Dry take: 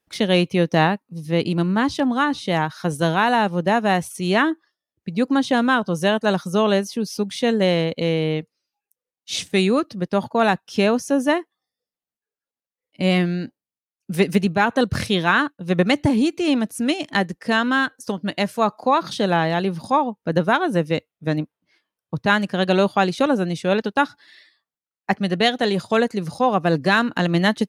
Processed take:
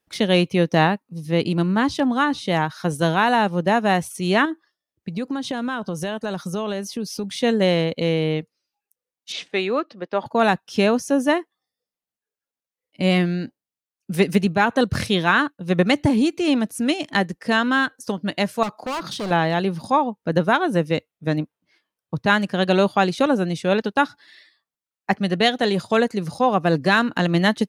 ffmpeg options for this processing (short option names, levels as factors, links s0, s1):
-filter_complex "[0:a]asettb=1/sr,asplit=3[s0][s1][s2];[s0]atrim=end=4.454[s3];[s1]atrim=start=4.45:end=7.24,asetpts=PTS-STARTPTS,afade=t=in:d=0.004:c=qsin,afade=t=out:st=2.786:d=0.004:c=qsin,acompressor=threshold=0.0794:ratio=6:attack=3.2:release=140:knee=1:detection=peak[s4];[s2]atrim=start=7.236[s5];[s3][s4]acrossfade=d=0.004:c1=hsin:c2=qsin[s6];[s6][s5]acrossfade=d=0.004:c1=qsin:c2=hsin,asettb=1/sr,asplit=3[s7][s8][s9];[s7]atrim=end=9.324[s10];[s8]atrim=start=9.32:end=10.26,asetpts=PTS-STARTPTS,afade=t=in:d=0.004:c=qsin,afade=t=out:st=0.936:d=0.004:c=qsin,highpass=400,lowpass=3200[s11];[s9]atrim=start=10.256[s12];[s10][s11]acrossfade=d=0.004:c1=hsin:c2=qsin[s13];[s13][s12]acrossfade=d=0.004:c1=qsin:c2=hsin,asettb=1/sr,asplit=3[s14][s15][s16];[s14]atrim=end=18.634[s17];[s15]atrim=start=18.63:end=19.31,asetpts=PTS-STARTPTS,afade=t=in:d=0.004:c=qsin,afade=t=out:st=0.676:d=0.004:c=qsin,volume=16.8,asoftclip=hard,volume=0.0596[s18];[s16]atrim=start=19.306[s19];[s17][s18]acrossfade=d=0.004:c1=hsin:c2=qsin[s20];[s20][s19]acrossfade=d=0.004:c1=qsin:c2=hsin"